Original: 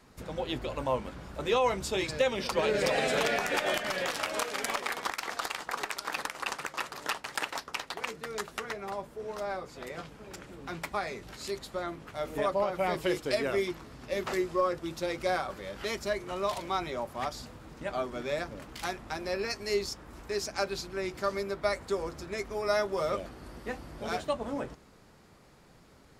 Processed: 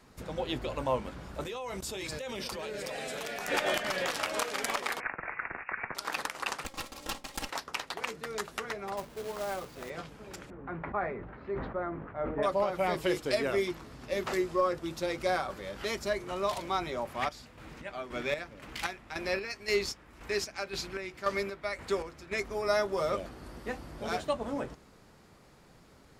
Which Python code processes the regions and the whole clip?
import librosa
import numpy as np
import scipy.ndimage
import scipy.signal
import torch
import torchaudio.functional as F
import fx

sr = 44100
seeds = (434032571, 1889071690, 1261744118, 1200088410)

y = fx.chain(x, sr, fx.high_shelf(hz=7100.0, db=10.5),
    fx.level_steps(step_db=19), at=(1.41, 3.48))
y = fx.chain(y, sr, fx.air_absorb(metres=320.0),
    fx.freq_invert(carrier_hz=2700),
    fx.band_squash(depth_pct=40), at=(5.0, 5.95))
y = fx.chain(y, sr, fx.lower_of_two(delay_ms=3.7),
    fx.peak_eq(hz=1600.0, db=-8.0, octaves=0.93), at=(6.64, 7.49))
y = fx.chain(y, sr, fx.air_absorb(metres=180.0),
    fx.quant_companded(bits=4), at=(8.97, 9.9))
y = fx.chain(y, sr, fx.lowpass(hz=1800.0, slope=24),
    fx.sustainer(db_per_s=54.0), at=(10.5, 12.43))
y = fx.chain(y, sr, fx.peak_eq(hz=2300.0, db=7.5, octaves=1.2),
    fx.chopper(hz=1.9, depth_pct=60, duty_pct=45),
    fx.clip_hard(threshold_db=-19.5), at=(17.05, 22.4))